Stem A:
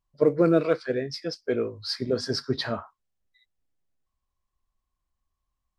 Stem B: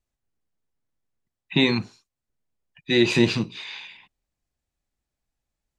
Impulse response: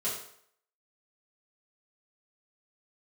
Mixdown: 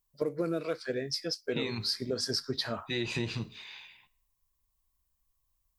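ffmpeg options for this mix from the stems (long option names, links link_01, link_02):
-filter_complex "[0:a]aemphasis=mode=production:type=75fm,volume=-3.5dB[link_01];[1:a]asubboost=boost=6.5:cutoff=86,volume=-10.5dB,asplit=2[link_02][link_03];[link_03]volume=-21dB[link_04];[2:a]atrim=start_sample=2205[link_05];[link_04][link_05]afir=irnorm=-1:irlink=0[link_06];[link_01][link_02][link_06]amix=inputs=3:normalize=0,acompressor=threshold=-28dB:ratio=6"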